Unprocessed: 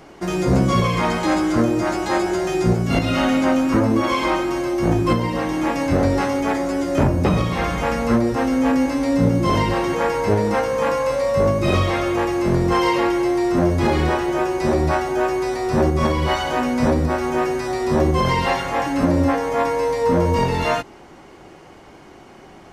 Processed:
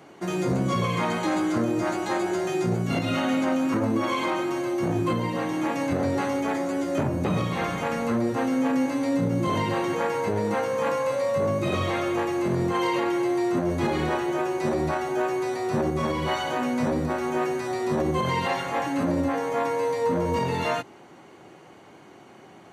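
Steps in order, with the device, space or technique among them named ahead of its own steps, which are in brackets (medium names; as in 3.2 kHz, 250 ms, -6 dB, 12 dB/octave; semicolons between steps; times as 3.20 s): PA system with an anti-feedback notch (high-pass 100 Hz 24 dB/octave; Butterworth band-stop 5.2 kHz, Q 7.9; peak limiter -11 dBFS, peak gain reduction 5.5 dB); trim -5 dB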